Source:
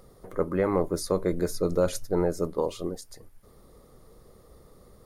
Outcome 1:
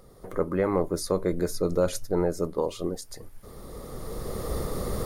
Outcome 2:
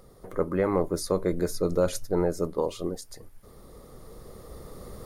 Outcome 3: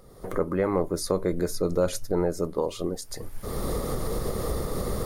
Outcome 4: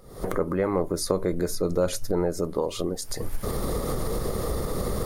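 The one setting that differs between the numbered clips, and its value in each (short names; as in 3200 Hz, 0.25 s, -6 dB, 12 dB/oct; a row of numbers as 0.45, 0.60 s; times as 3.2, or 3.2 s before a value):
recorder AGC, rising by: 13, 5.1, 34, 86 dB/s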